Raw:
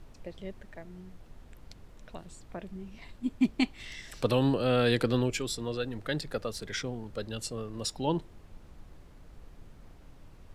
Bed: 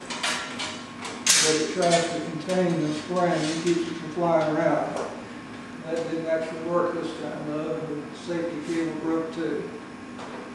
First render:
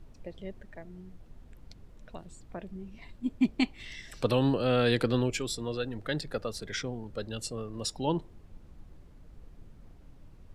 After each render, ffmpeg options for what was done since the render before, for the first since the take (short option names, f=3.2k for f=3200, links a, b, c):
-af "afftdn=nr=6:nf=-54"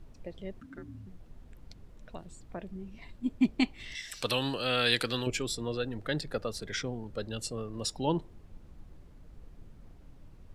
-filter_complex "[0:a]asettb=1/sr,asplit=3[a][b][c];[a]atrim=end=0.604[d];[b]atrim=start=0.6:end=1.07,asetpts=PTS-STARTPTS,afade=t=in:d=0.004:c=qsin,afade=t=out:st=0.466:d=0.004:c=qsin,afreqshift=-290[e];[c]atrim=start=1.066[f];[d][e]acrossfade=d=0.004:c1=hsin:c2=qsin[g];[g][f]acrossfade=d=0.004:c1=qsin:c2=hsin,asettb=1/sr,asplit=3[h][i][j];[h]atrim=end=3.954[k];[i]atrim=start=3.95:end=5.27,asetpts=PTS-STARTPTS,afade=t=in:d=0.004:c=qsin,afade=t=out:st=1.316:d=0.004:c=qsin,tiltshelf=f=1.2k:g=-9[l];[j]atrim=start=5.266[m];[k][l]acrossfade=d=0.004:c1=hsin:c2=qsin[n];[n][m]acrossfade=d=0.004:c1=qsin:c2=hsin"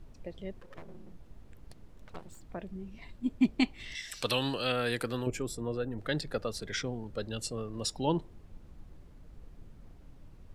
-filter_complex "[0:a]asettb=1/sr,asplit=3[a][b][c];[a]atrim=end=0.614[d];[b]atrim=start=0.61:end=2.45,asetpts=PTS-STARTPTS,afade=t=in:d=0.004:c=qsin,afade=t=out:st=1.836:d=0.004:c=qsin,aeval=exprs='abs(val(0))':c=same[e];[c]atrim=start=2.446[f];[d][e]acrossfade=d=0.004:c1=hsin:c2=qsin[g];[g][f]acrossfade=d=0.004:c1=qsin:c2=hsin,asettb=1/sr,asplit=3[h][i][j];[h]atrim=end=4.724[k];[i]atrim=start=4.72:end=5.98,asetpts=PTS-STARTPTS,afade=t=in:d=0.004:c=qsin,afade=t=out:st=1.256:d=0.004:c=qsin,equalizer=f=3.7k:t=o:w=1.6:g=-13[l];[j]atrim=start=5.976[m];[k][l]acrossfade=d=0.004:c1=hsin:c2=qsin[n];[n][m]acrossfade=d=0.004:c1=qsin:c2=hsin"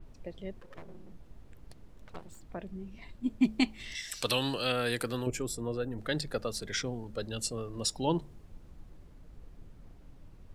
-af "bandreject=f=72.5:t=h:w=4,bandreject=f=145:t=h:w=4,bandreject=f=217.5:t=h:w=4,adynamicequalizer=threshold=0.00316:dfrequency=4700:dqfactor=0.7:tfrequency=4700:tqfactor=0.7:attack=5:release=100:ratio=0.375:range=2.5:mode=boostabove:tftype=highshelf"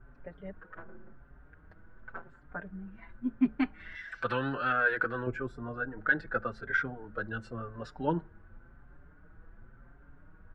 -filter_complex "[0:a]lowpass=f=1.5k:t=q:w=9.8,asplit=2[a][b];[b]adelay=5.4,afreqshift=0.92[c];[a][c]amix=inputs=2:normalize=1"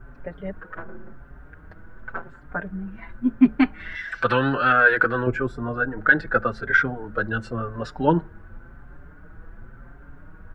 -af "volume=11dB,alimiter=limit=-3dB:level=0:latency=1"